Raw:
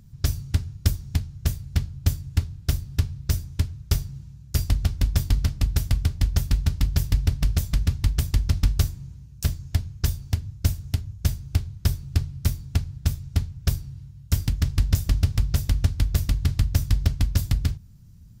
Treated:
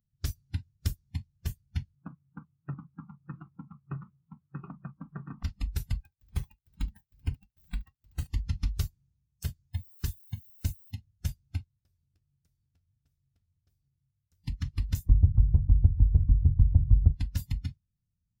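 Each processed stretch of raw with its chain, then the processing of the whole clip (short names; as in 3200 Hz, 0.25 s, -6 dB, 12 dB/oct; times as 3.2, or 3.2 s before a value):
1.95–5.43 speaker cabinet 140–2100 Hz, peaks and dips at 150 Hz +9 dB, 500 Hz -3 dB, 1200 Hz +9 dB, 1800 Hz -7 dB + echo 0.724 s -3 dB + Doppler distortion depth 0.3 ms
5.93–8.27 self-modulated delay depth 0.36 ms + feedback echo 72 ms, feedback 45%, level -11 dB + tremolo 2.2 Hz, depth 98%
9.73–10.9 gate -32 dBFS, range -24 dB + added noise blue -44 dBFS
11.64–14.44 compressor 3:1, threshold -35 dBFS + flange 1.3 Hz, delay 5.4 ms, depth 6.6 ms, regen +56%
15.09–17.12 LPF 1100 Hz + low shelf 190 Hz +11 dB
whole clip: spectral noise reduction 24 dB; dynamic EQ 630 Hz, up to -6 dB, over -51 dBFS, Q 1.5; gain -9 dB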